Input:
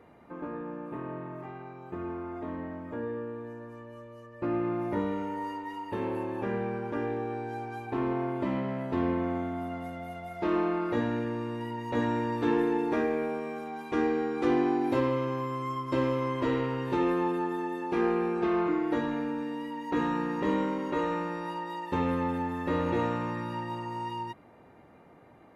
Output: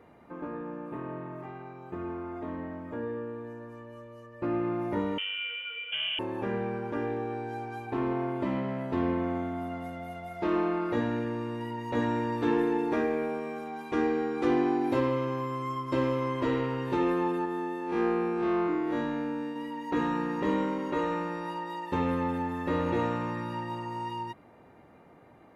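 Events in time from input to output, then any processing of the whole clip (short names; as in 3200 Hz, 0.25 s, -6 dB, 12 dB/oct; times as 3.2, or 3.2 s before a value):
5.18–6.19 inverted band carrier 3300 Hz
17.45–19.56 time blur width 84 ms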